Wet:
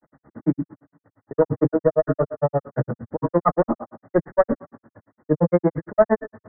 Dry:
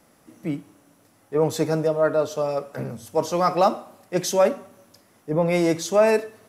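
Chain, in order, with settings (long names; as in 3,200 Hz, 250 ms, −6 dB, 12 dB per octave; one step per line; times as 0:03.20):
one-sided soft clipper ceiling −14.5 dBFS
downward expander −48 dBFS
Butterworth low-pass 1,900 Hz 96 dB per octave
on a send at −11 dB: spectral tilt −4.5 dB per octave + convolution reverb, pre-delay 3 ms
on the sum: granular cloud 70 ms, grains 8.7 per second, spray 13 ms, pitch spread up and down by 0 semitones
multiband upward and downward compressor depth 40%
level +7.5 dB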